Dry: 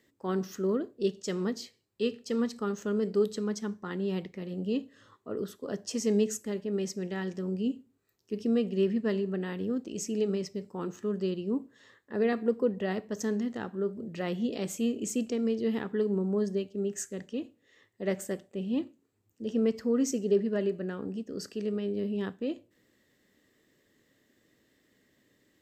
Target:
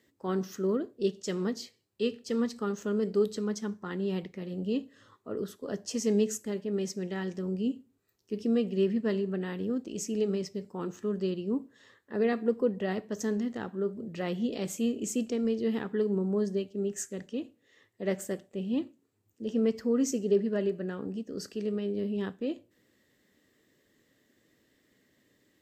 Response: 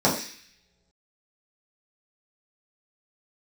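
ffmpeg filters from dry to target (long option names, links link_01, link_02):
-ar 48000 -c:a libvorbis -b:a 64k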